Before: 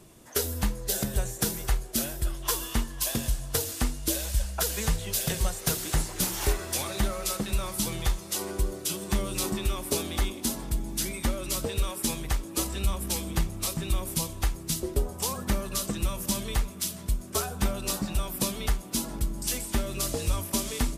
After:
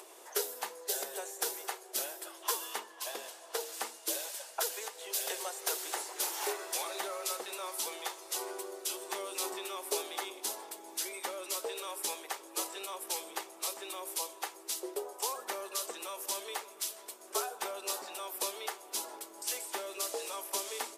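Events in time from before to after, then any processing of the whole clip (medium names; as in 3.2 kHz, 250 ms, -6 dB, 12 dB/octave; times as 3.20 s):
2.78–3.72 s: treble shelf 4.4 kHz -> 6.4 kHz -8.5 dB
4.68–5.10 s: compression 4:1, threshold -30 dBFS
whole clip: elliptic high-pass 390 Hz, stop band 80 dB; peaking EQ 850 Hz +5 dB 0.46 oct; upward compressor, threshold -40 dBFS; trim -4.5 dB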